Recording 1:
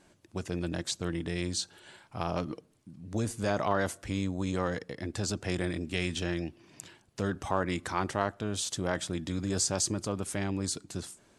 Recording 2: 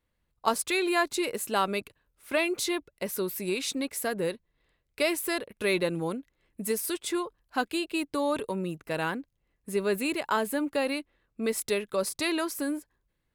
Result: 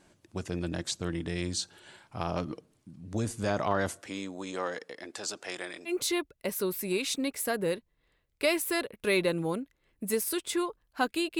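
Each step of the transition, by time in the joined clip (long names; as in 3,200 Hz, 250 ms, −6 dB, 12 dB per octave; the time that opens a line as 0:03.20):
recording 1
0:04.00–0:05.93: high-pass filter 290 Hz → 700 Hz
0:05.89: continue with recording 2 from 0:02.46, crossfade 0.08 s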